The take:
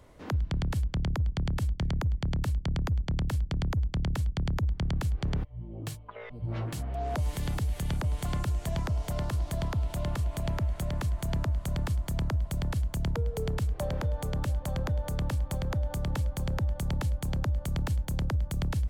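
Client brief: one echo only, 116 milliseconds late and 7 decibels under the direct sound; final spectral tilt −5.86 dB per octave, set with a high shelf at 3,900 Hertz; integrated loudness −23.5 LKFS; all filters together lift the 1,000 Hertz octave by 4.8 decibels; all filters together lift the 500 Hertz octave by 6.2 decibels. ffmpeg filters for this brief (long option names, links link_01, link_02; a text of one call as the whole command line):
ffmpeg -i in.wav -af "equalizer=frequency=500:width_type=o:gain=6.5,equalizer=frequency=1000:width_type=o:gain=3.5,highshelf=frequency=3900:gain=5.5,aecho=1:1:116:0.447,volume=7dB" out.wav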